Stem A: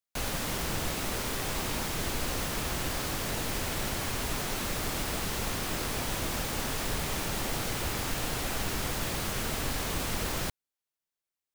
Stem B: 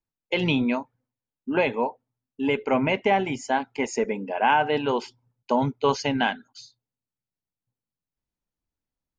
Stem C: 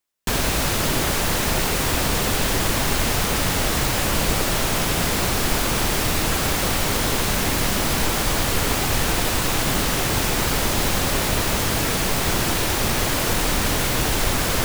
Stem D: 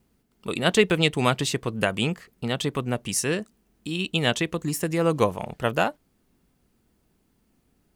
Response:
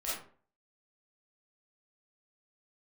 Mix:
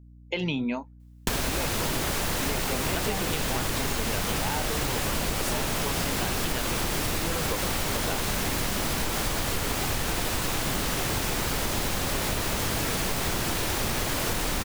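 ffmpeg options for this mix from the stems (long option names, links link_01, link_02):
-filter_complex "[1:a]aeval=exprs='val(0)+0.00447*(sin(2*PI*60*n/s)+sin(2*PI*2*60*n/s)/2+sin(2*PI*3*60*n/s)/3+sin(2*PI*4*60*n/s)/4+sin(2*PI*5*60*n/s)/5)':channel_layout=same,bass=frequency=250:gain=3,treble=frequency=4000:gain=7,volume=-4dB[link_01];[2:a]adelay=1000,volume=3dB[link_02];[3:a]adelay=2300,volume=-3dB[link_03];[link_01][link_02][link_03]amix=inputs=3:normalize=0,acompressor=threshold=-24dB:ratio=10"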